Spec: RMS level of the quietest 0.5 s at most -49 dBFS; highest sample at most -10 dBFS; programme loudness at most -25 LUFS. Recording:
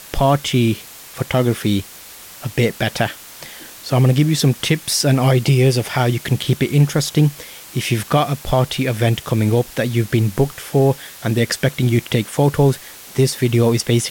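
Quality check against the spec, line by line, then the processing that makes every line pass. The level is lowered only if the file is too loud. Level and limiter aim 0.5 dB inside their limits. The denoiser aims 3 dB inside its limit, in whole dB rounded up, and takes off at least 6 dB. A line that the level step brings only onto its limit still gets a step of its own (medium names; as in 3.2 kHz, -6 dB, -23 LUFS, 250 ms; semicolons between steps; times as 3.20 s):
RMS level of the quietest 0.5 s -39 dBFS: fail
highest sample -4.5 dBFS: fail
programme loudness -18.0 LUFS: fail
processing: noise reduction 6 dB, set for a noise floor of -39 dBFS; trim -7.5 dB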